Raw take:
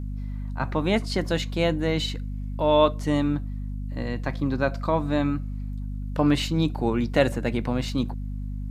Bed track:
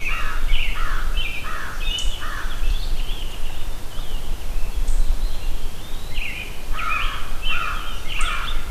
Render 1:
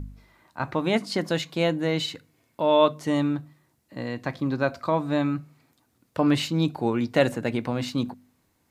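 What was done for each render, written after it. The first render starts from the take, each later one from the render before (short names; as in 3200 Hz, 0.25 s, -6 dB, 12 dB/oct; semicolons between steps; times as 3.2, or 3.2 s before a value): de-hum 50 Hz, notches 5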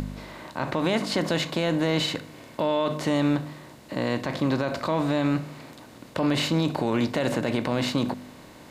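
per-bin compression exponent 0.6; limiter -14 dBFS, peak gain reduction 10.5 dB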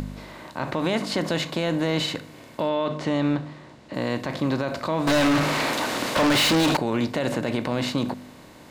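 2.69–3.94 air absorption 78 m; 5.07–6.77 overdrive pedal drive 33 dB, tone 6300 Hz, clips at -13.5 dBFS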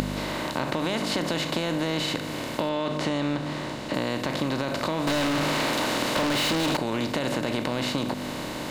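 per-bin compression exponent 0.6; compressor 4:1, threshold -24 dBFS, peak gain reduction 8 dB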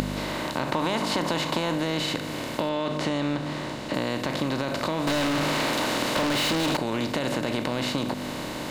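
0.72–1.75 bell 960 Hz +7 dB 0.55 oct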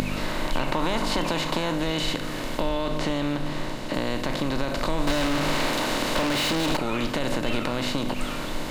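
add bed track -12 dB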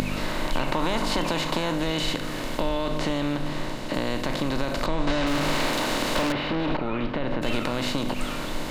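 4.86–5.27 air absorption 93 m; 6.32–7.42 air absorption 350 m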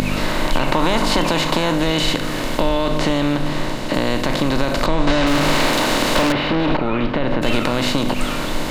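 gain +8 dB; limiter -3 dBFS, peak gain reduction 2.5 dB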